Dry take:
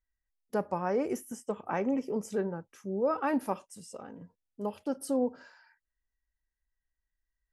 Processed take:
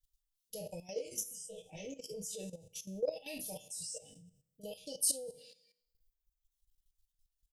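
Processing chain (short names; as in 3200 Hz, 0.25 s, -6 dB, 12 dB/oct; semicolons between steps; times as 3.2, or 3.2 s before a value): spectral trails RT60 0.77 s; reverb removal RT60 1.3 s; elliptic band-stop 540–3100 Hz, stop band 80 dB; passive tone stack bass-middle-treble 10-0-10; comb 6.4 ms, depth 93%; level quantiser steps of 14 dB; 0.93–1.83 detuned doubles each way 43 cents -> 24 cents; gain +13 dB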